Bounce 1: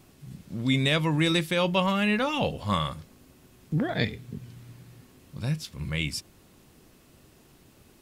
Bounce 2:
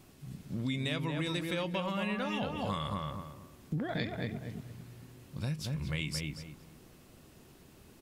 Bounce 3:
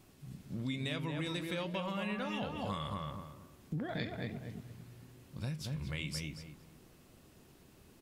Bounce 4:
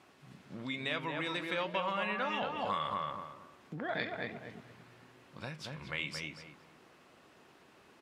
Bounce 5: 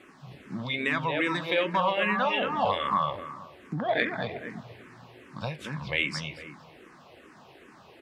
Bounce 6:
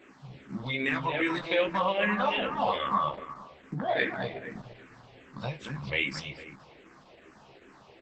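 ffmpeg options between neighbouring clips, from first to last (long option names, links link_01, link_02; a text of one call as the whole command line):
ffmpeg -i in.wav -filter_complex "[0:a]asplit=2[link_01][link_02];[link_02]adelay=227,lowpass=frequency=1700:poles=1,volume=-4dB,asplit=2[link_03][link_04];[link_04]adelay=227,lowpass=frequency=1700:poles=1,volume=0.28,asplit=2[link_05][link_06];[link_06]adelay=227,lowpass=frequency=1700:poles=1,volume=0.28,asplit=2[link_07][link_08];[link_08]adelay=227,lowpass=frequency=1700:poles=1,volume=0.28[link_09];[link_03][link_05][link_07][link_09]amix=inputs=4:normalize=0[link_10];[link_01][link_10]amix=inputs=2:normalize=0,acompressor=threshold=-29dB:ratio=6,volume=-2dB" out.wav
ffmpeg -i in.wav -af "flanger=delay=9.8:depth=6.1:regen=-85:speed=1.1:shape=sinusoidal,volume=1dB" out.wav
ffmpeg -i in.wav -af "bandpass=frequency=1300:width_type=q:width=0.7:csg=0,volume=8dB" out.wav
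ffmpeg -i in.wav -filter_complex "[0:a]bandreject=frequency=1400:width=19,asplit=2[link_01][link_02];[link_02]adynamicsmooth=sensitivity=2:basefreq=5400,volume=-2dB[link_03];[link_01][link_03]amix=inputs=2:normalize=0,asplit=2[link_04][link_05];[link_05]afreqshift=-2.5[link_06];[link_04][link_06]amix=inputs=2:normalize=1,volume=7dB" out.wav
ffmpeg -i in.wav -filter_complex "[0:a]highpass=61,asplit=2[link_01][link_02];[link_02]adelay=15,volume=-3.5dB[link_03];[link_01][link_03]amix=inputs=2:normalize=0,volume=-2.5dB" -ar 48000 -c:a libopus -b:a 12k out.opus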